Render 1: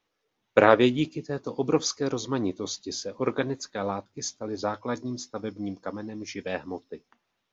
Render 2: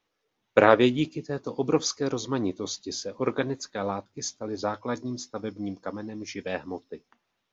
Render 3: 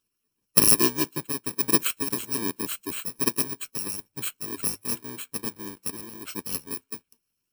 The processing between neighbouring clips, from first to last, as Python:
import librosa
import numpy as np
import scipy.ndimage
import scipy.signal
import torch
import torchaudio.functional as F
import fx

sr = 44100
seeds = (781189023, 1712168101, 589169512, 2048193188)

y1 = x
y2 = fx.bit_reversed(y1, sr, seeds[0], block=64)
y2 = fx.hpss(y2, sr, part='harmonic', gain_db=-13)
y2 = F.gain(torch.from_numpy(y2), 3.0).numpy()